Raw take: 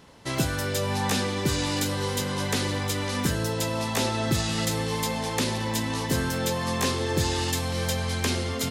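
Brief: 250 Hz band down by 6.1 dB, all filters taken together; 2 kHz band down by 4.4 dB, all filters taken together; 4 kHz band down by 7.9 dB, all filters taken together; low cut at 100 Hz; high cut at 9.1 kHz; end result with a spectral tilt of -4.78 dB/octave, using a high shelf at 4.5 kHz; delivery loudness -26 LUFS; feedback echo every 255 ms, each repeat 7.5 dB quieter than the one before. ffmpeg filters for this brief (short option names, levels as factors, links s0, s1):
-af "highpass=100,lowpass=9100,equalizer=f=250:t=o:g=-8,equalizer=f=2000:t=o:g=-3,equalizer=f=4000:t=o:g=-6,highshelf=f=4500:g=-5.5,aecho=1:1:255|510|765|1020|1275:0.422|0.177|0.0744|0.0312|0.0131,volume=1.58"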